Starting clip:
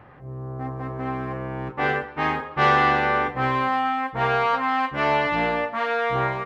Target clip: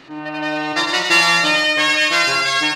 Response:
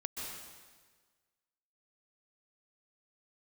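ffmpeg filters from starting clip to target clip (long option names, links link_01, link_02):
-filter_complex "[0:a]aecho=1:1:250|425|547.5|633.2|693.3:0.631|0.398|0.251|0.158|0.1,asplit=2[link_01][link_02];[1:a]atrim=start_sample=2205,afade=type=out:start_time=0.21:duration=0.01,atrim=end_sample=9702[link_03];[link_02][link_03]afir=irnorm=-1:irlink=0,volume=-3dB[link_04];[link_01][link_04]amix=inputs=2:normalize=0,asetrate=103194,aresample=44100,volume=1dB"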